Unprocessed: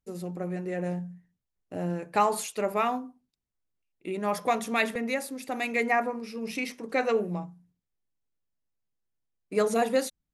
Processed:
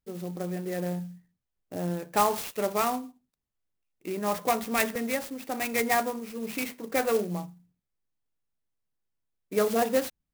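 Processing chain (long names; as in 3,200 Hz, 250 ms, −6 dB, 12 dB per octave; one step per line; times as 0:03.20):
converter with an unsteady clock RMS 0.05 ms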